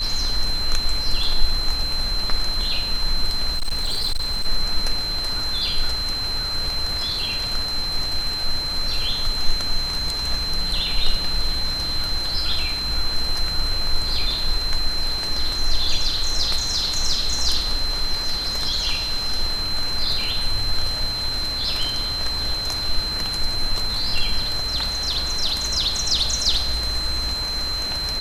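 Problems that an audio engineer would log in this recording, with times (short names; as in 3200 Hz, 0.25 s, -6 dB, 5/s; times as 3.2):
tone 4100 Hz -24 dBFS
3.52–4.46 clipped -18 dBFS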